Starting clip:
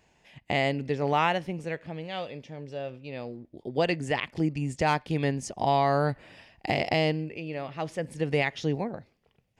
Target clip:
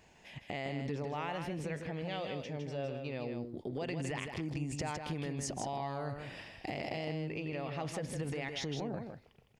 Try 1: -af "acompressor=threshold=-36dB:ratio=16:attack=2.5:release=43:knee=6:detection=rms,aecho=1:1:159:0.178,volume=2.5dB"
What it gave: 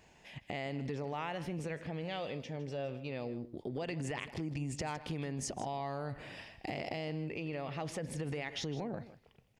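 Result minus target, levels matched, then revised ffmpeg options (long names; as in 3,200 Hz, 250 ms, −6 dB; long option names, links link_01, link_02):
echo-to-direct −9 dB
-af "acompressor=threshold=-36dB:ratio=16:attack=2.5:release=43:knee=6:detection=rms,aecho=1:1:159:0.501,volume=2.5dB"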